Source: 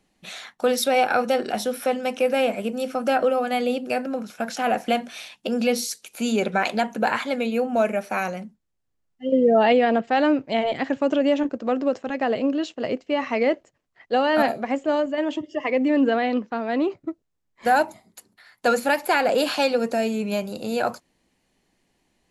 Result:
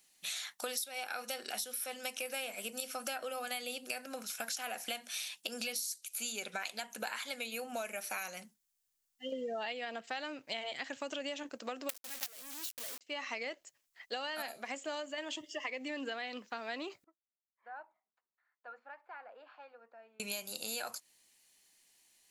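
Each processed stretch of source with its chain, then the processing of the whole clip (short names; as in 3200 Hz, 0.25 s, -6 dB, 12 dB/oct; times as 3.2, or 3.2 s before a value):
11.89–13.01 half-wave gain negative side -7 dB + companded quantiser 2-bit
17.04–20.2 LPF 1200 Hz 24 dB/oct + differentiator
whole clip: pre-emphasis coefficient 0.97; compressor 10:1, threshold -45 dBFS; gain +9 dB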